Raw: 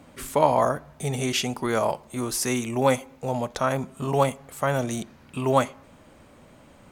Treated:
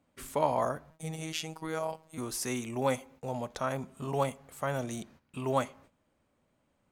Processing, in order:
noise gate −47 dBFS, range −14 dB
0:00.90–0:02.18: phases set to zero 159 Hz
level −8.5 dB

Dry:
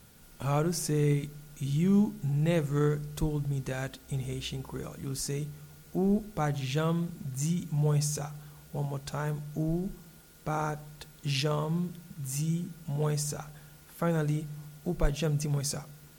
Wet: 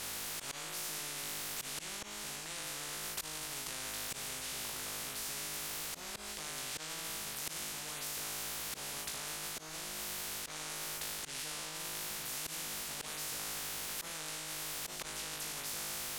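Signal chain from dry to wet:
mains-hum notches 50/100/150/200/250/300 Hz
flutter between parallel walls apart 3.3 metres, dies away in 0.78 s
volume swells 146 ms
high-frequency loss of the air 57 metres
in parallel at −4 dB: soft clipping −23.5 dBFS, distortion −12 dB
on the sum: tilt shelving filter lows −5 dB
reversed playback
downward compressor, threshold −36 dBFS, peak gain reduction 16 dB
reversed playback
every bin compressed towards the loudest bin 10 to 1

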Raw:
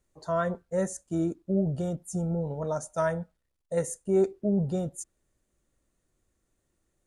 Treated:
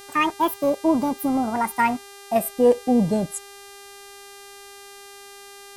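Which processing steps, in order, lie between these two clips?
gliding playback speed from 186% → 59%
hum with harmonics 400 Hz, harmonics 32, −51 dBFS −3 dB per octave
level +7.5 dB

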